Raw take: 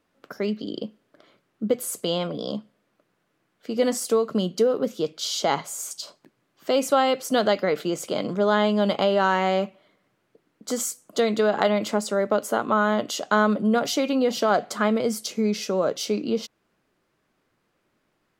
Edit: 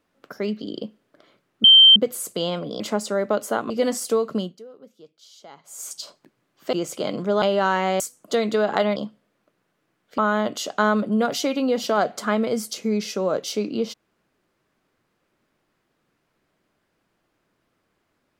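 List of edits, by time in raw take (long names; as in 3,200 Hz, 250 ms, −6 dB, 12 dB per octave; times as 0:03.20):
0:01.64: insert tone 3,130 Hz −7 dBFS 0.32 s
0:02.48–0:03.70: swap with 0:11.81–0:12.71
0:04.34–0:05.88: duck −22 dB, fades 0.25 s
0:06.73–0:07.84: remove
0:08.53–0:09.01: remove
0:09.59–0:10.85: remove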